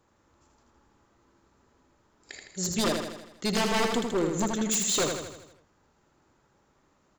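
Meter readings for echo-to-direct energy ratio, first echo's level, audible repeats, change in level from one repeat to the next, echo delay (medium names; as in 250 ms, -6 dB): -3.5 dB, -5.0 dB, 6, -5.0 dB, 80 ms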